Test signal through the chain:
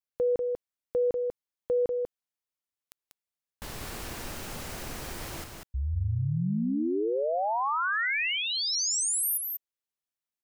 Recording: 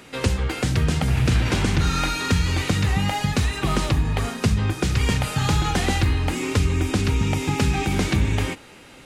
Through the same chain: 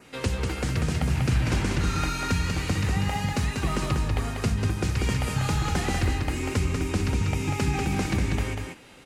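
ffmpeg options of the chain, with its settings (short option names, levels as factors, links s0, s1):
-af "adynamicequalizer=threshold=0.00501:dfrequency=3500:dqfactor=3.2:tfrequency=3500:tqfactor=3.2:attack=5:release=100:ratio=0.375:range=2.5:mode=cutabove:tftype=bell,aecho=1:1:192:0.596,volume=0.531"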